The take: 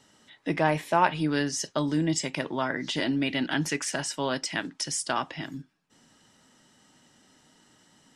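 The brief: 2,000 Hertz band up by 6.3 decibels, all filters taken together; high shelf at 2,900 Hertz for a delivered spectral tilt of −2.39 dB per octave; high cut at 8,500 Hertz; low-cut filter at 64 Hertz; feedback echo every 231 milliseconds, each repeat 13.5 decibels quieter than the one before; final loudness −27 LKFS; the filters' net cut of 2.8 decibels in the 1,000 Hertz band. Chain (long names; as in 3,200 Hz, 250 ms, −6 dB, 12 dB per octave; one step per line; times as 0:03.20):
high-pass filter 64 Hz
low-pass filter 8,500 Hz
parametric band 1,000 Hz −6 dB
parametric band 2,000 Hz +6.5 dB
high-shelf EQ 2,900 Hz +9 dB
repeating echo 231 ms, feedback 21%, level −13.5 dB
level −2 dB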